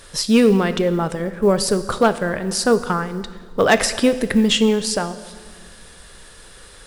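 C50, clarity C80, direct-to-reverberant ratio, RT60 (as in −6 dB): 13.5 dB, 14.5 dB, 11.5 dB, 1.6 s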